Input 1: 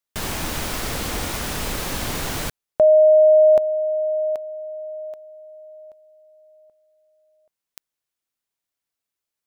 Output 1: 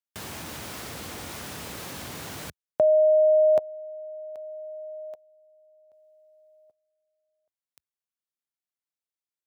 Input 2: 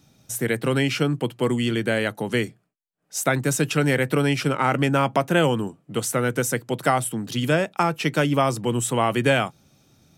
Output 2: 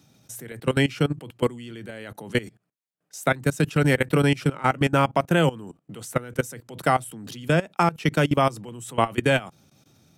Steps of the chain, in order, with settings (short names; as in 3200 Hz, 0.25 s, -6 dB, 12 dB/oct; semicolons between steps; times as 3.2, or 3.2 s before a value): HPF 73 Hz 24 dB/oct; dynamic EQ 160 Hz, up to +5 dB, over -38 dBFS, Q 5.4; level quantiser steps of 20 dB; gain +2 dB